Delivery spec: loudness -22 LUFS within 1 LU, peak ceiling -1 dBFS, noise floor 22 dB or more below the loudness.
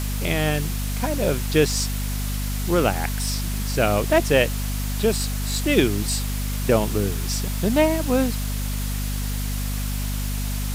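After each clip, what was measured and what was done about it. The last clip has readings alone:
hum 50 Hz; harmonics up to 250 Hz; hum level -23 dBFS; noise floor -26 dBFS; noise floor target -45 dBFS; loudness -23.0 LUFS; peak -3.5 dBFS; loudness target -22.0 LUFS
-> notches 50/100/150/200/250 Hz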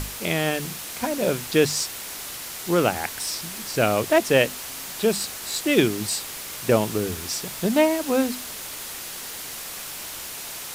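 hum none; noise floor -35 dBFS; noise floor target -47 dBFS
-> denoiser 12 dB, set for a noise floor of -35 dBFS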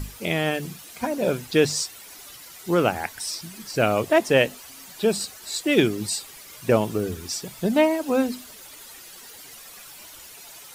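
noise floor -44 dBFS; noise floor target -46 dBFS
-> denoiser 6 dB, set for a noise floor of -44 dBFS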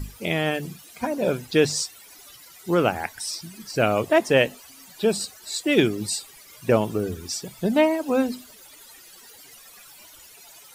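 noise floor -48 dBFS; loudness -24.0 LUFS; peak -4.0 dBFS; loudness target -22.0 LUFS
-> gain +2 dB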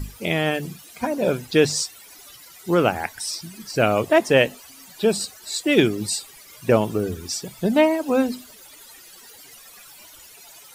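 loudness -22.0 LUFS; peak -2.0 dBFS; noise floor -46 dBFS

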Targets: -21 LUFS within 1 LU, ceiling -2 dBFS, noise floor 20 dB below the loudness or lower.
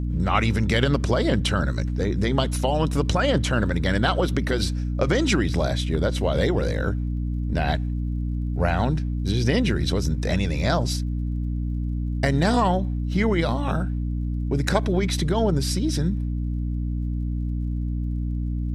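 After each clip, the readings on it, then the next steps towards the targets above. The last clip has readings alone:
ticks 41/s; hum 60 Hz; harmonics up to 300 Hz; hum level -23 dBFS; loudness -24.0 LUFS; peak -6.0 dBFS; loudness target -21.0 LUFS
-> de-click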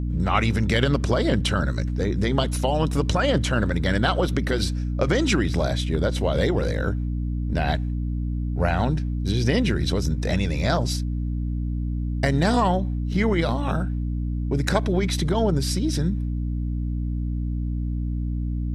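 ticks 0.11/s; hum 60 Hz; harmonics up to 300 Hz; hum level -23 dBFS
-> notches 60/120/180/240/300 Hz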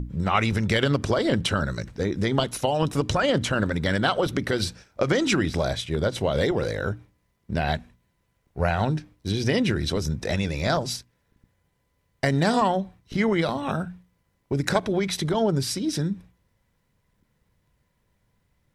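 hum none; loudness -25.0 LUFS; peak -7.5 dBFS; loudness target -21.0 LUFS
-> gain +4 dB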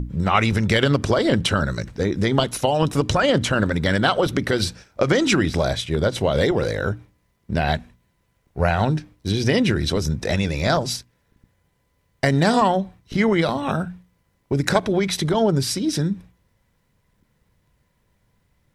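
loudness -21.0 LUFS; peak -3.5 dBFS; noise floor -67 dBFS

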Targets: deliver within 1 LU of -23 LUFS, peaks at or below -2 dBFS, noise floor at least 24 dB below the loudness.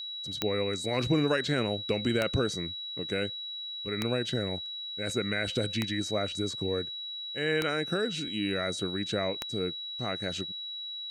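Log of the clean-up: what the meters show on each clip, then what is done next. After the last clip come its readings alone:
clicks 6; steady tone 3900 Hz; tone level -36 dBFS; loudness -31.0 LUFS; peak -11.0 dBFS; loudness target -23.0 LUFS
-> de-click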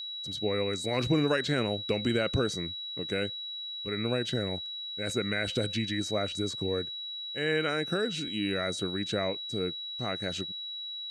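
clicks 0; steady tone 3900 Hz; tone level -36 dBFS
-> notch 3900 Hz, Q 30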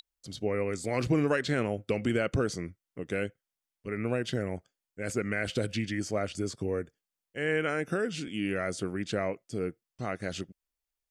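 steady tone none; loudness -32.0 LUFS; peak -15.5 dBFS; loudness target -23.0 LUFS
-> gain +9 dB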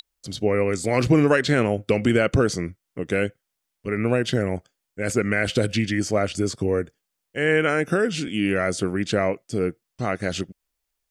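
loudness -23.0 LUFS; peak -6.5 dBFS; noise floor -81 dBFS

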